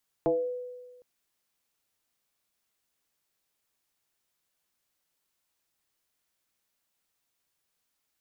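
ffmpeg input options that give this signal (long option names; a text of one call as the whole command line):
ffmpeg -f lavfi -i "aevalsrc='0.0944*pow(10,-3*t/1.41)*sin(2*PI*496*t+1.6*pow(10,-3*t/0.42)*sin(2*PI*0.35*496*t))':duration=0.76:sample_rate=44100" out.wav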